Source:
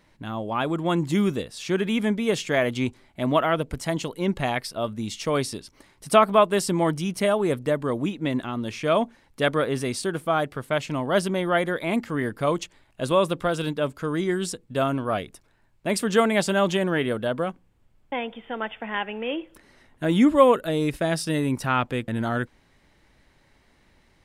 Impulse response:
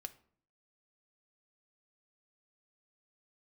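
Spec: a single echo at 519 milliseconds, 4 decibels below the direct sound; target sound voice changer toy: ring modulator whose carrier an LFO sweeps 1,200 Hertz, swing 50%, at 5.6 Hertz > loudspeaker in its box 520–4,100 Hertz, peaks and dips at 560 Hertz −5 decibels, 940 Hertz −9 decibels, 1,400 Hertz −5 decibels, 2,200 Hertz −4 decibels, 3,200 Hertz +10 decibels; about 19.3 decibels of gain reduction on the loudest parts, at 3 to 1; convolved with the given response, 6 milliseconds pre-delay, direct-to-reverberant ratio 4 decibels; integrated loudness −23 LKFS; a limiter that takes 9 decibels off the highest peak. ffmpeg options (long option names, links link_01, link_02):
-filter_complex "[0:a]acompressor=threshold=-39dB:ratio=3,alimiter=level_in=6.5dB:limit=-24dB:level=0:latency=1,volume=-6.5dB,aecho=1:1:519:0.631,asplit=2[link_01][link_02];[1:a]atrim=start_sample=2205,adelay=6[link_03];[link_02][link_03]afir=irnorm=-1:irlink=0,volume=0dB[link_04];[link_01][link_04]amix=inputs=2:normalize=0,aeval=exprs='val(0)*sin(2*PI*1200*n/s+1200*0.5/5.6*sin(2*PI*5.6*n/s))':channel_layout=same,highpass=520,equalizer=frequency=560:width_type=q:width=4:gain=-5,equalizer=frequency=940:width_type=q:width=4:gain=-9,equalizer=frequency=1400:width_type=q:width=4:gain=-5,equalizer=frequency=2200:width_type=q:width=4:gain=-4,equalizer=frequency=3200:width_type=q:width=4:gain=10,lowpass=frequency=4100:width=0.5412,lowpass=frequency=4100:width=1.3066,volume=19.5dB"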